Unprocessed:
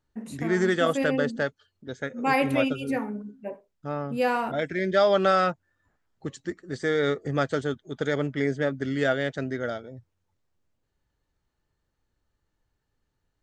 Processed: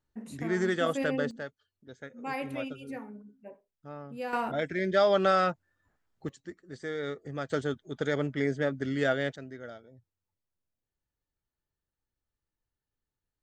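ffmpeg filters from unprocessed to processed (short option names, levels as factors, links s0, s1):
-af "asetnsamples=n=441:p=0,asendcmd='1.31 volume volume -12dB;4.33 volume volume -3dB;6.29 volume volume -10.5dB;7.5 volume volume -3dB;9.36 volume volume -13dB',volume=0.562"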